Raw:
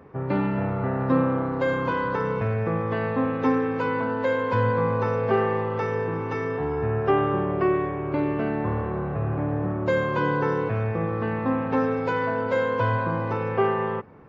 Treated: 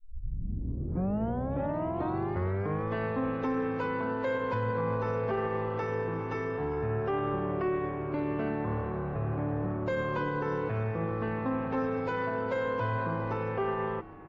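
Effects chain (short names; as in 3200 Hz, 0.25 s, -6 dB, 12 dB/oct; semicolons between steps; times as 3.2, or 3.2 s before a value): tape start at the beginning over 2.91 s; limiter -17 dBFS, peak gain reduction 6 dB; frequency-shifting echo 0.402 s, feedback 53%, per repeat -69 Hz, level -19 dB; low-pass opened by the level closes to 1700 Hz, open at -23 dBFS; gain -5.5 dB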